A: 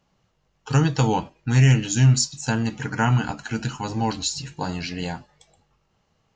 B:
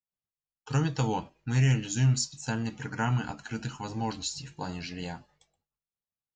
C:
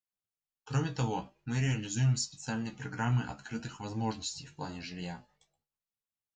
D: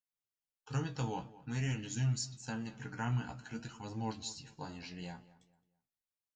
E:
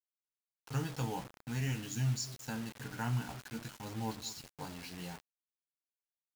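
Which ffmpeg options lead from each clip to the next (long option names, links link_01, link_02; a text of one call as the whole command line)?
ffmpeg -i in.wav -af "agate=range=-33dB:threshold=-50dB:ratio=3:detection=peak,volume=-8dB" out.wav
ffmpeg -i in.wav -af "flanger=delay=9.1:depth=7.7:regen=38:speed=0.49:shape=sinusoidal" out.wav
ffmpeg -i in.wav -filter_complex "[0:a]asplit=2[link_01][link_02];[link_02]adelay=217,lowpass=frequency=2400:poles=1,volume=-18dB,asplit=2[link_03][link_04];[link_04]adelay=217,lowpass=frequency=2400:poles=1,volume=0.34,asplit=2[link_05][link_06];[link_06]adelay=217,lowpass=frequency=2400:poles=1,volume=0.34[link_07];[link_01][link_03][link_05][link_07]amix=inputs=4:normalize=0,volume=-5dB" out.wav
ffmpeg -i in.wav -af "acrusher=bits=7:mix=0:aa=0.000001" out.wav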